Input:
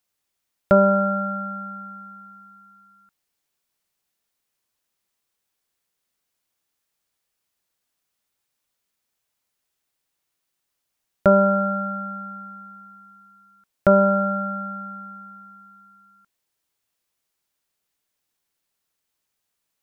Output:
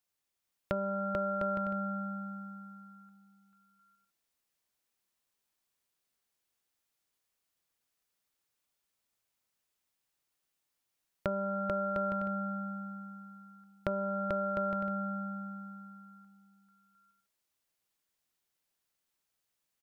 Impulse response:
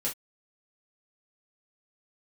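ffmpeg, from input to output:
-filter_complex "[0:a]acompressor=threshold=0.0562:ratio=6,asplit=2[s0][s1];[s1]aecho=0:1:440|704|862.4|957.4|1014:0.631|0.398|0.251|0.158|0.1[s2];[s0][s2]amix=inputs=2:normalize=0,volume=0.447"

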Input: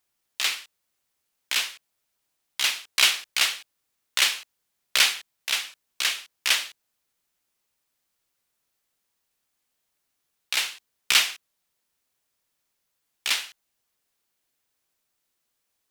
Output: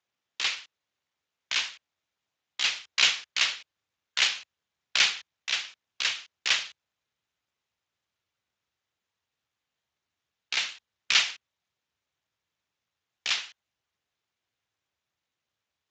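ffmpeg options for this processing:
-af "asubboost=boost=3.5:cutoff=110,volume=0.794" -ar 16000 -c:a libspeex -b:a 34k

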